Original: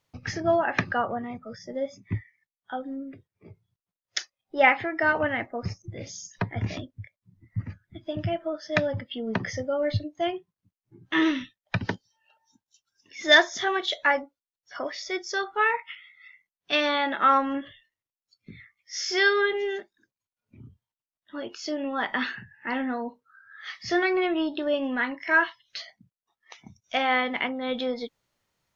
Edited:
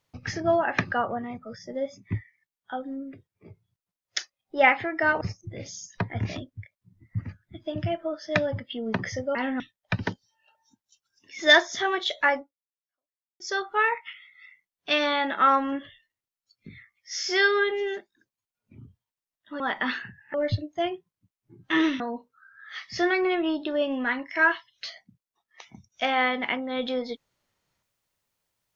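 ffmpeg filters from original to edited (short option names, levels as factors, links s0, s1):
-filter_complex "[0:a]asplit=8[s0][s1][s2][s3][s4][s5][s6][s7];[s0]atrim=end=5.212[s8];[s1]atrim=start=5.618:end=9.762[s9];[s2]atrim=start=22.668:end=22.922[s10];[s3]atrim=start=11.418:end=15.22,asetpts=PTS-STARTPTS,afade=t=out:st=2.792:d=1.01:c=exp[s11];[s4]atrim=start=15.22:end=21.422,asetpts=PTS-STARTPTS,afade=t=in:d=0.004:c=hsin[s12];[s5]atrim=start=21.928:end=22.672[s13];[s6]atrim=start=9.758:end=11.422[s14];[s7]atrim=start=22.918[s15];[s8][s9]acrossfade=d=0.004:c1=hsin:c2=hsin[s16];[s16][s10]acrossfade=d=0.004:c1=hsin:c2=hsin[s17];[s11][s12]concat=n=2:v=0:a=1[s18];[s17][s18]acrossfade=d=0.004:c1=hsin:c2=hsin[s19];[s19][s13]acrossfade=d=0.004:c1=hsin:c2=hsin[s20];[s20][s14]acrossfade=d=0.004:c1=hsin:c2=hsin[s21];[s21][s15]acrossfade=d=0.004:c1=hsin:c2=hsin"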